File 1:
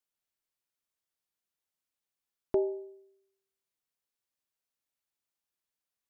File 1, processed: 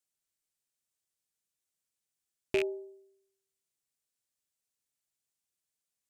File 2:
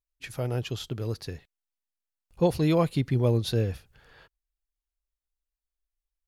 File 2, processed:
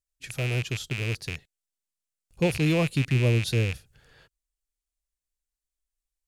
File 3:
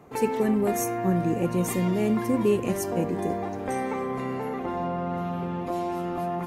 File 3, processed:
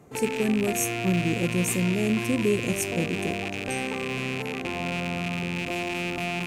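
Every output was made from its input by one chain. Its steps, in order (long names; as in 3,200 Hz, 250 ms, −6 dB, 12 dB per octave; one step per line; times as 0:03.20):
loose part that buzzes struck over −39 dBFS, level −19 dBFS
octave-band graphic EQ 125/1,000/8,000 Hz +4/−5/+8 dB
level −1.5 dB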